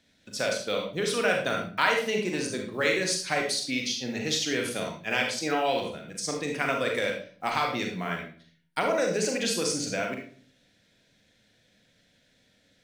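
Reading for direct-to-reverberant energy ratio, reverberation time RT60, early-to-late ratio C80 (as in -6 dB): 1.0 dB, 0.45 s, 9.0 dB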